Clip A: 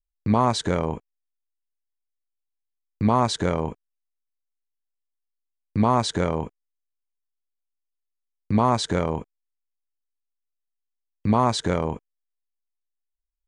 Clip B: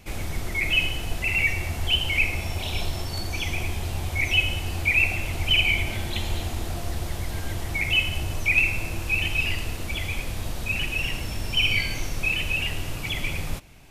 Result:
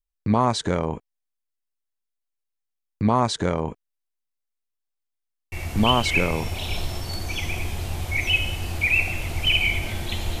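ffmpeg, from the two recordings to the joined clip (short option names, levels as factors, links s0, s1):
-filter_complex "[0:a]apad=whole_dur=10.4,atrim=end=10.4,atrim=end=6.7,asetpts=PTS-STARTPTS[s0];[1:a]atrim=start=1.56:end=6.44,asetpts=PTS-STARTPTS[s1];[s0][s1]acrossfade=d=1.18:c1=log:c2=log"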